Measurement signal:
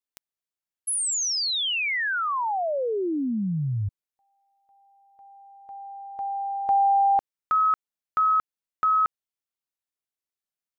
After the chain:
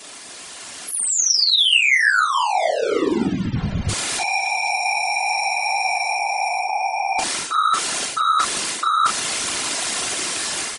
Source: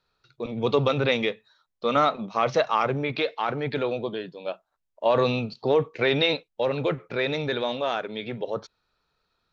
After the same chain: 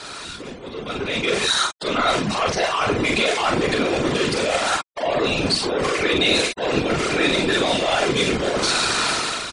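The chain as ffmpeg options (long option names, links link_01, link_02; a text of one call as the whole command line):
ffmpeg -i in.wav -filter_complex "[0:a]aeval=exprs='val(0)+0.5*0.0501*sgn(val(0))':channel_layout=same,aresample=22050,aresample=44100,highpass=120,areverse,acompressor=threshold=-29dB:ratio=12:attack=62:release=170:knee=6:detection=rms,areverse,aecho=1:1:2.9:0.44,acrossover=split=1700[link_01][link_02];[link_01]asoftclip=type=tanh:threshold=-31.5dB[link_03];[link_03][link_02]amix=inputs=2:normalize=0,aecho=1:1:31|42:0.178|0.668,afftfilt=real='hypot(re,im)*cos(2*PI*random(0))':imag='hypot(re,im)*sin(2*PI*random(1))':win_size=512:overlap=0.75,afftfilt=real='re*gte(hypot(re,im),0.00224)':imag='im*gte(hypot(re,im),0.00224)':win_size=1024:overlap=0.75,dynaudnorm=framelen=760:gausssize=3:maxgain=15dB,volume=3dB" out.wav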